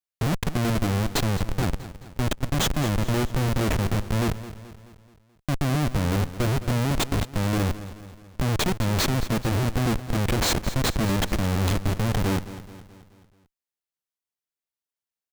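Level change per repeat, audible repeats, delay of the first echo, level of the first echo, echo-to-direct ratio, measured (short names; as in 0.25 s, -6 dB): -6.0 dB, 4, 0.215 s, -14.5 dB, -13.0 dB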